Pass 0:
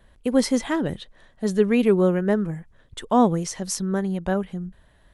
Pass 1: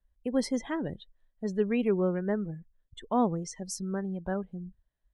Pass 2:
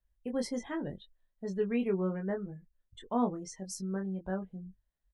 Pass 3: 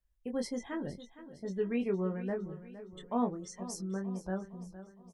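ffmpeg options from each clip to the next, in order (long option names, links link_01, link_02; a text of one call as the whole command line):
ffmpeg -i in.wav -af "afftdn=noise_reduction=22:noise_floor=-36,volume=-8.5dB" out.wav
ffmpeg -i in.wav -filter_complex "[0:a]asplit=2[link_01][link_02];[link_02]adelay=21,volume=-4.5dB[link_03];[link_01][link_03]amix=inputs=2:normalize=0,volume=-5.5dB" out.wav
ffmpeg -i in.wav -af "aecho=1:1:462|924|1386|1848|2310:0.188|0.0942|0.0471|0.0235|0.0118,volume=-1.5dB" out.wav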